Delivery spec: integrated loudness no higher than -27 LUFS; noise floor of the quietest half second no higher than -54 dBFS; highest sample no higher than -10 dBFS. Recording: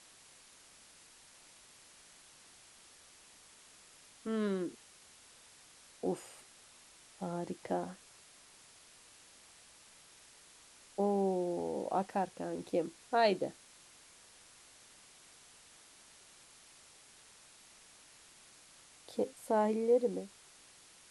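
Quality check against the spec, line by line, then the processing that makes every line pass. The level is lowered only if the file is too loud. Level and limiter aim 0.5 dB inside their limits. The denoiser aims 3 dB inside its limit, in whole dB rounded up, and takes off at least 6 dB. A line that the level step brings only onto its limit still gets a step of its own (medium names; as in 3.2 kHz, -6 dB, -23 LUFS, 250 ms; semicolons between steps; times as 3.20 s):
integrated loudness -35.5 LUFS: pass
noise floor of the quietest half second -60 dBFS: pass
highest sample -17.5 dBFS: pass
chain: none needed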